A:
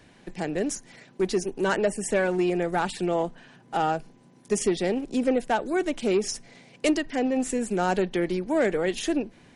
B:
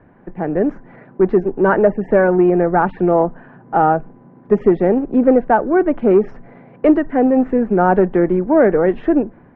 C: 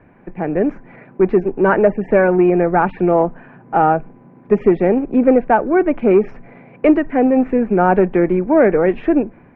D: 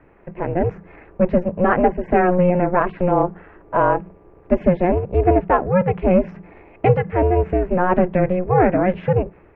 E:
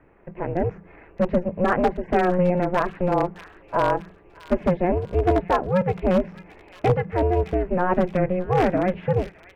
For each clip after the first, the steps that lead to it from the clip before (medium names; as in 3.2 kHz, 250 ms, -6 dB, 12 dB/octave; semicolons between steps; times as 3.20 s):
low-pass 1.5 kHz 24 dB/octave; level rider gain up to 5 dB; trim +6.5 dB
peaking EQ 2.4 kHz +11 dB 0.34 oct
ring modulator 180 Hz
one-sided wavefolder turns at -7.5 dBFS; feedback echo behind a high-pass 615 ms, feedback 45%, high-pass 2.5 kHz, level -8.5 dB; trim -4 dB